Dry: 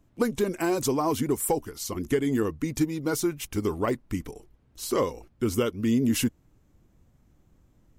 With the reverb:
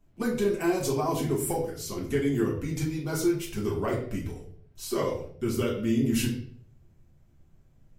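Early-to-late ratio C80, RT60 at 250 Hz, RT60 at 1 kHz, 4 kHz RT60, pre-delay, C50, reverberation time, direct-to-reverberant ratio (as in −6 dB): 10.0 dB, 0.70 s, 0.50 s, 0.45 s, 5 ms, 7.0 dB, 0.55 s, −5.0 dB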